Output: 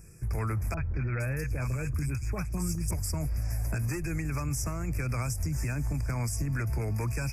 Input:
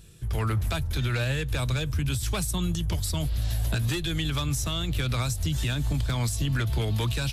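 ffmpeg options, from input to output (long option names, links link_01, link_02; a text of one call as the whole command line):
ffmpeg -i in.wav -filter_complex "[0:a]acompressor=threshold=-27dB:ratio=6,asuperstop=centerf=3500:order=20:qfactor=1.6,asettb=1/sr,asplit=3[link_01][link_02][link_03];[link_01]atrim=end=0.744[link_04];[link_02]atrim=start=0.74:end=2.91,asetpts=PTS-STARTPTS,afade=type=in:duration=0.004:curve=qsin,afade=type=out:start_time=2.166:duration=0.004:curve=qsin,acrossover=split=820|3300[link_05][link_06][link_07];[link_06]adelay=30[link_08];[link_07]adelay=460[link_09];[link_05][link_08][link_09]amix=inputs=3:normalize=0,atrim=end_sample=95697[link_10];[link_03]atrim=start=2.906[link_11];[link_04][link_10]acrossfade=duration=0.004:curve1=hsin:curve2=qsin[link_12];[link_12][link_11]acrossfade=duration=0.004:curve1=qsin:curve2=hsin" out.wav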